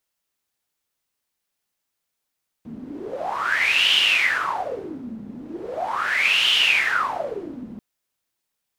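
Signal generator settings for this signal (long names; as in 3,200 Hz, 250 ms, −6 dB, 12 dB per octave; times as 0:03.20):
wind from filtered noise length 5.14 s, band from 220 Hz, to 3,000 Hz, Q 11, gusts 2, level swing 18 dB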